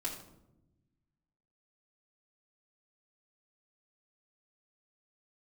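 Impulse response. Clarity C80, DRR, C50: 9.0 dB, -6.0 dB, 6.5 dB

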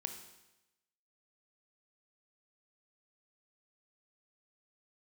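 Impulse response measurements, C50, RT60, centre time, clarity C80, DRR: 8.0 dB, 0.95 s, 19 ms, 10.0 dB, 6.0 dB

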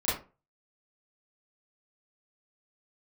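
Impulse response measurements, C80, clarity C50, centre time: 11.5 dB, 4.0 dB, 46 ms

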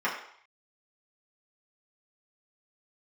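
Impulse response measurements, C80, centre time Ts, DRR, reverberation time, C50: 9.0 dB, 31 ms, -7.5 dB, 0.65 s, 6.0 dB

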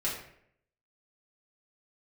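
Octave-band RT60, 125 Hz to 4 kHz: 0.80, 0.75, 0.75, 0.60, 0.65, 0.45 s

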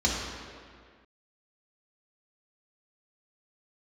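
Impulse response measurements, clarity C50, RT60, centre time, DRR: 0.5 dB, 1.9 s, 98 ms, -5.5 dB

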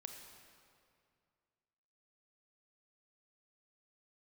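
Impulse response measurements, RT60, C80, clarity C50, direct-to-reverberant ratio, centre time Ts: 2.3 s, 5.5 dB, 4.5 dB, 3.5 dB, 56 ms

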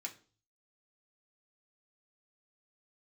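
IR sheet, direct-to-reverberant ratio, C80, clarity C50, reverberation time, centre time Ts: -0.5 dB, 19.5 dB, 14.5 dB, 0.40 s, 10 ms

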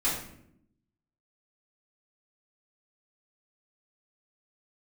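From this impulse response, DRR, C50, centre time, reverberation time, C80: -9.0 dB, 3.5 dB, 44 ms, 0.75 s, 7.0 dB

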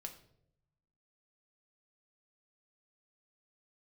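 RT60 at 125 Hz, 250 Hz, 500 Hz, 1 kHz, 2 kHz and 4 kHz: 1.3, 1.1, 0.90, 0.60, 0.50, 0.50 s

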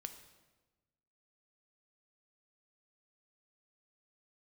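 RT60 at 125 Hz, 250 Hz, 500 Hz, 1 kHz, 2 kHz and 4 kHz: 1.6, 1.4, 1.3, 1.1, 1.0, 0.95 s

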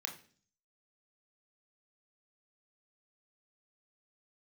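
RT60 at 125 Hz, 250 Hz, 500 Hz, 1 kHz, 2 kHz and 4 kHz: 0.70, 0.65, 0.50, 0.40, 0.45, 0.50 s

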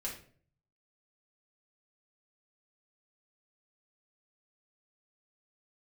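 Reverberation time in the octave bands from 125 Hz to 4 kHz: 0.90, 0.60, 0.55, 0.40, 0.40, 0.35 s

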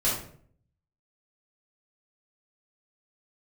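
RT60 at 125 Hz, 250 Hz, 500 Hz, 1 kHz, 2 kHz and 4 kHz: 0.90, 0.70, 0.60, 0.50, 0.45, 0.35 s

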